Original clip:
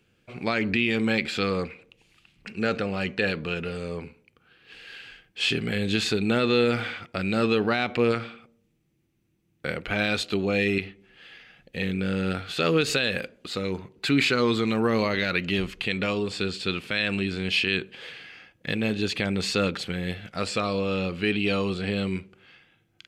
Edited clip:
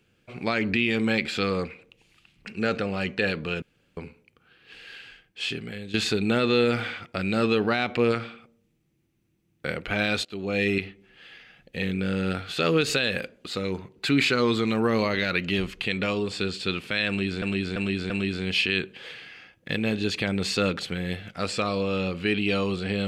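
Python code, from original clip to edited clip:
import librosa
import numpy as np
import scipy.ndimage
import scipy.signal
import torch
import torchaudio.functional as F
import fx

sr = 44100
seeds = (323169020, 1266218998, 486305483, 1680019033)

y = fx.edit(x, sr, fx.room_tone_fill(start_s=3.62, length_s=0.35),
    fx.fade_out_to(start_s=4.86, length_s=1.08, floor_db=-14.0),
    fx.fade_in_from(start_s=10.25, length_s=0.39, floor_db=-19.0),
    fx.repeat(start_s=17.08, length_s=0.34, count=4), tone=tone)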